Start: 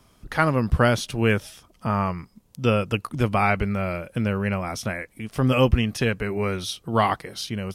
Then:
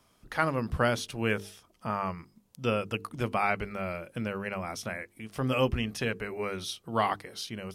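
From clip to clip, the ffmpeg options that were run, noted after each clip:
-af "lowshelf=f=150:g=-7,bandreject=f=50:t=h:w=6,bandreject=f=100:t=h:w=6,bandreject=f=150:t=h:w=6,bandreject=f=200:t=h:w=6,bandreject=f=250:t=h:w=6,bandreject=f=300:t=h:w=6,bandreject=f=350:t=h:w=6,bandreject=f=400:t=h:w=6,bandreject=f=450:t=h:w=6,volume=0.501"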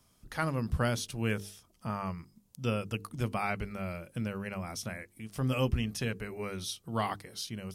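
-af "bass=f=250:g=8,treble=f=4000:g=8,volume=0.501"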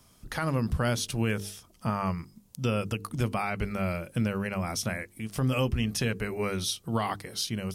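-af "alimiter=level_in=1.19:limit=0.0631:level=0:latency=1:release=151,volume=0.841,volume=2.37"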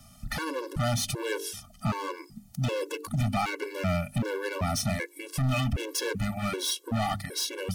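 -af "volume=35.5,asoftclip=hard,volume=0.0282,afftfilt=real='re*gt(sin(2*PI*1.3*pts/sr)*(1-2*mod(floor(b*sr/1024/290),2)),0)':imag='im*gt(sin(2*PI*1.3*pts/sr)*(1-2*mod(floor(b*sr/1024/290),2)),0)':win_size=1024:overlap=0.75,volume=2.51"

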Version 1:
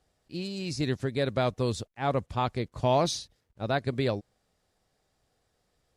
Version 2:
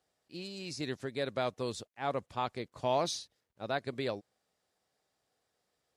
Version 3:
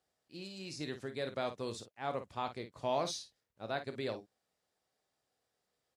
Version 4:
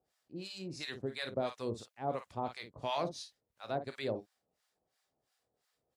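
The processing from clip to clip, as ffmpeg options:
-af "highpass=f=330:p=1,volume=0.596"
-af "aecho=1:1:27|52:0.237|0.299,volume=0.631"
-filter_complex "[0:a]acrossover=split=850[s0][s1];[s0]aeval=exprs='val(0)*(1-1/2+1/2*cos(2*PI*2.9*n/s))':c=same[s2];[s1]aeval=exprs='val(0)*(1-1/2-1/2*cos(2*PI*2.9*n/s))':c=same[s3];[s2][s3]amix=inputs=2:normalize=0,volume=2"

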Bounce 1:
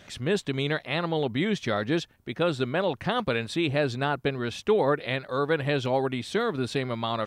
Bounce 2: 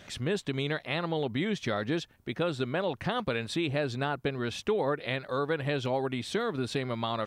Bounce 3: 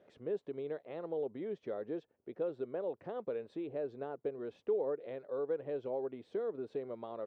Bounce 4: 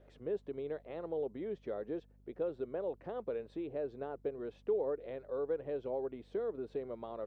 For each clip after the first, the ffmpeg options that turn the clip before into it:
-af "acompressor=threshold=0.0355:ratio=2"
-af "bandpass=f=460:t=q:w=2.7:csg=0,volume=0.708"
-af "aeval=exprs='val(0)+0.000794*(sin(2*PI*50*n/s)+sin(2*PI*2*50*n/s)/2+sin(2*PI*3*50*n/s)/3+sin(2*PI*4*50*n/s)/4+sin(2*PI*5*50*n/s)/5)':c=same"

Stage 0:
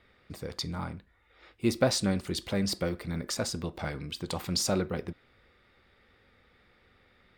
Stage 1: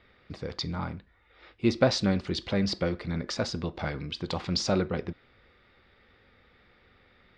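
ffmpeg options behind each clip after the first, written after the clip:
-af "lowpass=f=5300:w=0.5412,lowpass=f=5300:w=1.3066,volume=1.33"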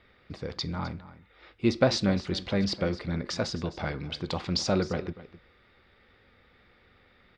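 -af "aecho=1:1:258:0.158"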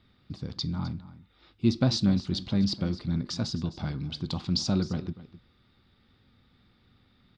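-af "equalizer=f=125:t=o:w=1:g=7,equalizer=f=250:t=o:w=1:g=6,equalizer=f=500:t=o:w=1:g=-10,equalizer=f=2000:t=o:w=1:g=-10,equalizer=f=4000:t=o:w=1:g=5,volume=0.75"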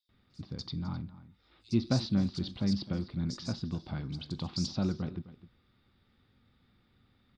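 -filter_complex "[0:a]acrossover=split=4500[s0][s1];[s0]adelay=90[s2];[s2][s1]amix=inputs=2:normalize=0,volume=0.596"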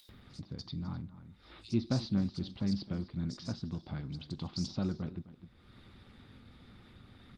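-af "acompressor=mode=upward:threshold=0.0141:ratio=2.5,volume=0.75" -ar 48000 -c:a libopus -b:a 20k

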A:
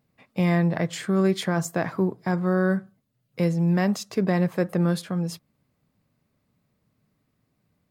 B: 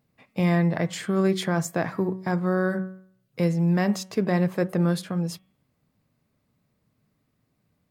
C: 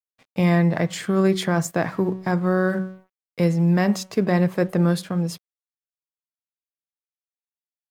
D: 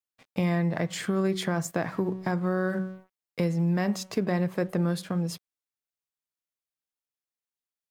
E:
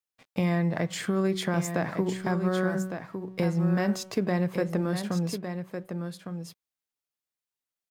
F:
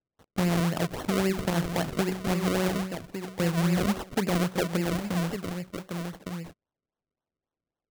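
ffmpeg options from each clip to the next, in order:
-af "bandreject=f=187.4:t=h:w=4,bandreject=f=374.8:t=h:w=4,bandreject=f=562.2:t=h:w=4,bandreject=f=749.6:t=h:w=4,bandreject=f=937:t=h:w=4,bandreject=f=1124.4:t=h:w=4,bandreject=f=1311.8:t=h:w=4,bandreject=f=1499.2:t=h:w=4,bandreject=f=1686.6:t=h:w=4,bandreject=f=1874:t=h:w=4,bandreject=f=2061.4:t=h:w=4,bandreject=f=2248.8:t=h:w=4,bandreject=f=2436.2:t=h:w=4,bandreject=f=2623.6:t=h:w=4,bandreject=f=2811:t=h:w=4,bandreject=f=2998.4:t=h:w=4,bandreject=f=3185.8:t=h:w=4,bandreject=f=3373.2:t=h:w=4"
-af "aeval=exprs='sgn(val(0))*max(abs(val(0))-0.00211,0)':c=same,volume=1.5"
-af "acompressor=threshold=0.0398:ratio=2"
-af "aecho=1:1:1158:0.398"
-af "acrusher=samples=36:mix=1:aa=0.000001:lfo=1:lforange=36:lforate=3.7"

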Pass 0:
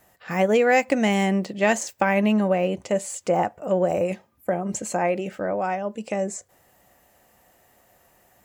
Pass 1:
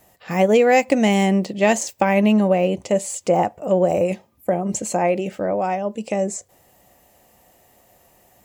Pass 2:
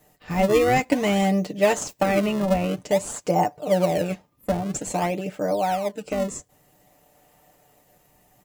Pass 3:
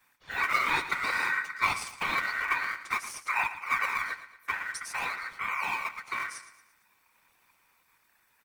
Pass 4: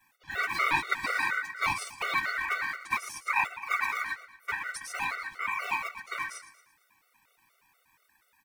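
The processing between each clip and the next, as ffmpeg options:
-af "equalizer=f=1500:t=o:w=0.77:g=-7.5,volume=1.68"
-filter_complex "[0:a]aecho=1:1:6.7:0.7,asplit=2[s0][s1];[s1]acrusher=samples=32:mix=1:aa=0.000001:lfo=1:lforange=51.2:lforate=0.51,volume=0.422[s2];[s0][s2]amix=inputs=2:normalize=0,volume=0.473"
-af "afftfilt=real='hypot(re,im)*cos(2*PI*random(0))':imag='hypot(re,im)*sin(2*PI*random(1))':win_size=512:overlap=0.75,aecho=1:1:114|228|342|456:0.224|0.0985|0.0433|0.0191,aeval=exprs='val(0)*sin(2*PI*1700*n/s)':c=same"
-af "afftfilt=real='re*gt(sin(2*PI*4.2*pts/sr)*(1-2*mod(floor(b*sr/1024/380),2)),0)':imag='im*gt(sin(2*PI*4.2*pts/sr)*(1-2*mod(floor(b*sr/1024/380),2)),0)':win_size=1024:overlap=0.75,volume=1.41"

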